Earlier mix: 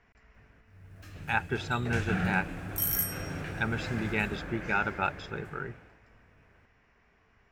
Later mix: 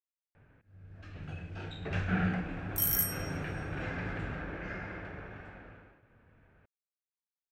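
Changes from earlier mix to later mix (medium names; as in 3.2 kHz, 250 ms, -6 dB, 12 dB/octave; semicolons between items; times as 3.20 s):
speech: muted; first sound: add low-pass 3.3 kHz 12 dB/octave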